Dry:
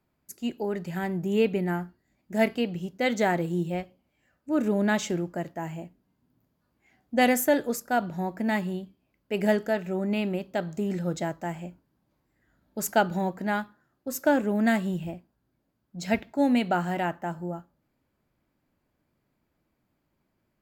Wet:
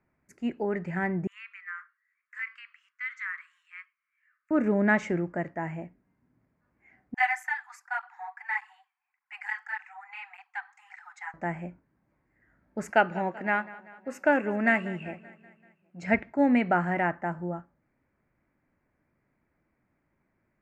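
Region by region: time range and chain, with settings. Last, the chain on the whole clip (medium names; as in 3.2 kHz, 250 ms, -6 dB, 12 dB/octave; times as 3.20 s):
1.27–4.51 s: steep high-pass 1.1 kHz 96 dB/octave + compression 2:1, threshold -36 dBFS + treble shelf 3 kHz -9.5 dB
7.14–11.34 s: Chebyshev high-pass 750 Hz, order 10 + cancelling through-zero flanger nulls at 1.7 Hz, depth 4.9 ms
12.90–16.03 s: high-pass 320 Hz 6 dB/octave + peaking EQ 2.7 kHz +13 dB 0.23 oct + feedback delay 192 ms, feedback 56%, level -19 dB
whole clip: Bessel low-pass 6.5 kHz, order 4; resonant high shelf 2.7 kHz -9 dB, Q 3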